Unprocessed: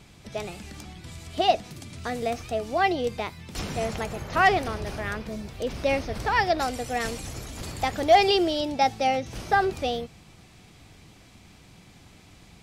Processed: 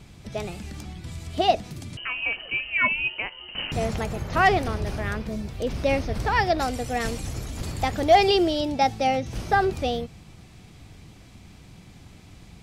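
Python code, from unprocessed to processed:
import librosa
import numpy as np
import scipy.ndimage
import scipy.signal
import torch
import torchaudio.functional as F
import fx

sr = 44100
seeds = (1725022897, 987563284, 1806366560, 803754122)

y = fx.freq_invert(x, sr, carrier_hz=3000, at=(1.97, 3.72))
y = fx.low_shelf(y, sr, hz=250.0, db=7.0)
y = fx.end_taper(y, sr, db_per_s=490.0)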